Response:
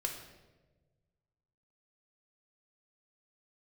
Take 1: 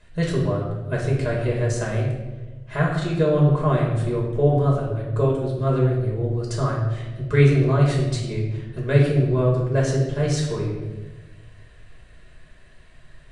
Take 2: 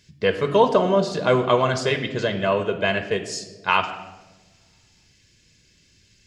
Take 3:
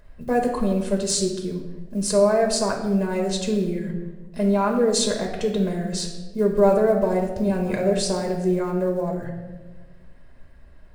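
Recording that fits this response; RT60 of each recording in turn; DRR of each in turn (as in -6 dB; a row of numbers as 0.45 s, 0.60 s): 3; 1.3 s, 1.3 s, 1.3 s; -4.0 dB, 7.0 dB, 1.5 dB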